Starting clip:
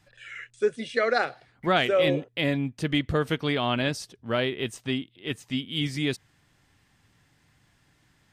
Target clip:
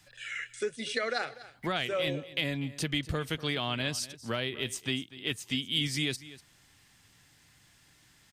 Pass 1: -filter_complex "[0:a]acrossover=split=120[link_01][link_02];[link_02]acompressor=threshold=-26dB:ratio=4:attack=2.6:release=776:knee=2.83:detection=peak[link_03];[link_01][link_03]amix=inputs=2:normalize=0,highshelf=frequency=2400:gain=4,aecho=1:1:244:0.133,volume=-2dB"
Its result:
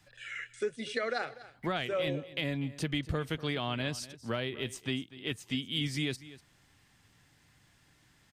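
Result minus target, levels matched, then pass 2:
4,000 Hz band −2.5 dB
-filter_complex "[0:a]acrossover=split=120[link_01][link_02];[link_02]acompressor=threshold=-26dB:ratio=4:attack=2.6:release=776:knee=2.83:detection=peak[link_03];[link_01][link_03]amix=inputs=2:normalize=0,highshelf=frequency=2400:gain=11.5,aecho=1:1:244:0.133,volume=-2dB"

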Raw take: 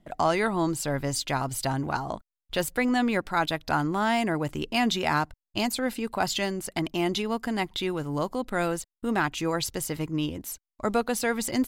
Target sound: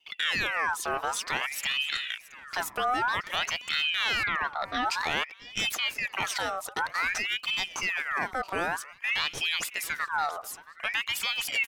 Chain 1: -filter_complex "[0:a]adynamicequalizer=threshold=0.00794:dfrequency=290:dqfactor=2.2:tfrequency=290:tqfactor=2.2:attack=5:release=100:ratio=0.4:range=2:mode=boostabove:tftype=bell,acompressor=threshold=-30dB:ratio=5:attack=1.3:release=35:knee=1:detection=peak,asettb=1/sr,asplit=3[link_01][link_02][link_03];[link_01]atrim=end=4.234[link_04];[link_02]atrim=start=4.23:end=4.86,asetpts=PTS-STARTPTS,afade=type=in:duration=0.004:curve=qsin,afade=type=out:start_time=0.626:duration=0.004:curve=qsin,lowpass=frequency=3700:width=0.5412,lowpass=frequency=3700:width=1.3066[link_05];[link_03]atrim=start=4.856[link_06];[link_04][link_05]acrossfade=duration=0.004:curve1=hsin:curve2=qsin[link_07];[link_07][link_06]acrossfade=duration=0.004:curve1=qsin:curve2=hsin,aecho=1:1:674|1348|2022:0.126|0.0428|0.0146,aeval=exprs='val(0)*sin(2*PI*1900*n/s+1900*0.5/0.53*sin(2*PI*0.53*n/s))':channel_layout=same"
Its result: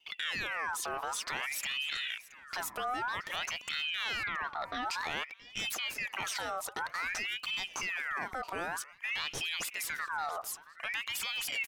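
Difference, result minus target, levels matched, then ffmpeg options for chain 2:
downward compressor: peak gain reduction +7.5 dB
-filter_complex "[0:a]adynamicequalizer=threshold=0.00794:dfrequency=290:dqfactor=2.2:tfrequency=290:tqfactor=2.2:attack=5:release=100:ratio=0.4:range=2:mode=boostabove:tftype=bell,acompressor=threshold=-20.5dB:ratio=5:attack=1.3:release=35:knee=1:detection=peak,asettb=1/sr,asplit=3[link_01][link_02][link_03];[link_01]atrim=end=4.234[link_04];[link_02]atrim=start=4.23:end=4.86,asetpts=PTS-STARTPTS,afade=type=in:duration=0.004:curve=qsin,afade=type=out:start_time=0.626:duration=0.004:curve=qsin,lowpass=frequency=3700:width=0.5412,lowpass=frequency=3700:width=1.3066[link_05];[link_03]atrim=start=4.856[link_06];[link_04][link_05]acrossfade=duration=0.004:curve1=hsin:curve2=qsin[link_07];[link_07][link_06]acrossfade=duration=0.004:curve1=qsin:curve2=hsin,aecho=1:1:674|1348|2022:0.126|0.0428|0.0146,aeval=exprs='val(0)*sin(2*PI*1900*n/s+1900*0.5/0.53*sin(2*PI*0.53*n/s))':channel_layout=same"

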